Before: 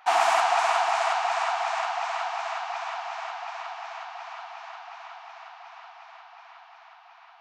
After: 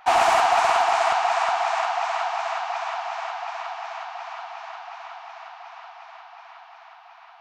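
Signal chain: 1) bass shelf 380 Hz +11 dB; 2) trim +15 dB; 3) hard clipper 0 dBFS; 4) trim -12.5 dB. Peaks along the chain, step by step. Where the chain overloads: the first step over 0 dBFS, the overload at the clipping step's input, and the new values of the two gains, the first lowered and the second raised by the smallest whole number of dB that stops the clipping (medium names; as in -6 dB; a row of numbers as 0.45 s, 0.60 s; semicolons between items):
-8.0 dBFS, +7.0 dBFS, 0.0 dBFS, -12.5 dBFS; step 2, 7.0 dB; step 2 +8 dB, step 4 -5.5 dB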